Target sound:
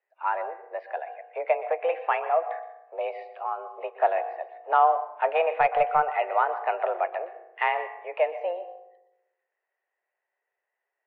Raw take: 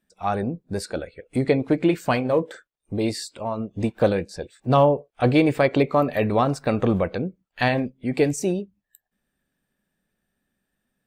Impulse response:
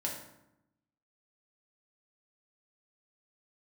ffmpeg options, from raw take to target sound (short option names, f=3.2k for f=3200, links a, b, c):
-filter_complex "[0:a]asplit=2[a][b];[1:a]atrim=start_sample=2205,adelay=121[c];[b][c]afir=irnorm=-1:irlink=0,volume=-15dB[d];[a][d]amix=inputs=2:normalize=0,highpass=f=370:t=q:w=0.5412,highpass=f=370:t=q:w=1.307,lowpass=f=2.4k:t=q:w=0.5176,lowpass=f=2.4k:t=q:w=0.7071,lowpass=f=2.4k:t=q:w=1.932,afreqshift=170,asettb=1/sr,asplit=3[e][f][g];[e]atrim=end=5.604[h];[f]atrim=start=5.6:end=6.17,asetpts=PTS-STARTPTS,afade=t=in:d=0.004:c=qsin,afade=t=out:st=0.566:d=0.004:c=qsin,aeval=exprs='0.422*(cos(1*acos(clip(val(0)/0.422,-1,1)))-cos(1*PI/2))+0.0299*(cos(2*acos(clip(val(0)/0.422,-1,1)))-cos(2*PI/2))':c=same[i];[g]atrim=start=6.166[j];[h][i]acrossfade=d=0.004:c1=hsin:c2=qsin[k];[k][j]acrossfade=d=0.004:c1=qsin:c2=hsin,volume=-2dB"